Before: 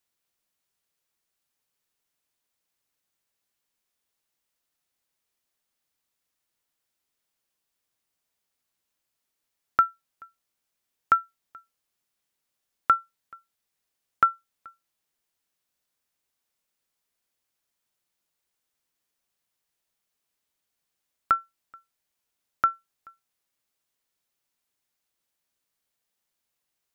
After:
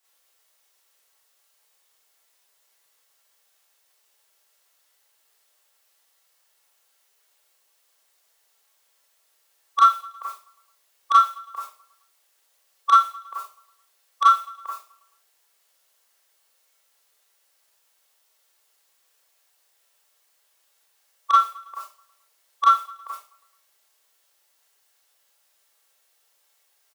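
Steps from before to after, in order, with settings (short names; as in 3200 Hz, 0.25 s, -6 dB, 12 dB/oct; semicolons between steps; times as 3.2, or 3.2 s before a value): formant shift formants -3 st; in parallel at +3 dB: compressor, threshold -35 dBFS, peak gain reduction 19 dB; on the sum: soft clip -16 dBFS, distortion -8 dB; HPF 440 Hz 24 dB/oct; notch 2400 Hz, Q 24; on a send: feedback echo 0.108 s, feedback 56%, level -20.5 dB; on the sum: Schroeder reverb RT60 0.33 s, combs from 28 ms, DRR -7 dB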